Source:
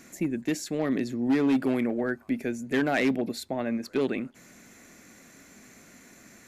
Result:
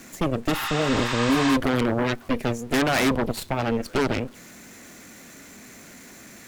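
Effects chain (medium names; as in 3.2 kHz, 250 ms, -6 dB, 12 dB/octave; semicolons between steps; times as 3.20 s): jump at every zero crossing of -42.5 dBFS; Chebyshev shaper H 6 -8 dB, 7 -29 dB, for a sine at -16 dBFS; spectral replace 0.56–1.49 s, 780–8700 Hz both; trim +1.5 dB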